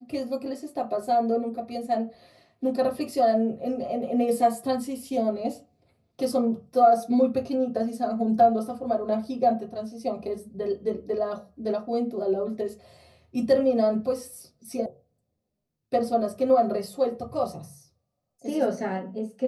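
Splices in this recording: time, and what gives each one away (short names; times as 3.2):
14.86 sound cut off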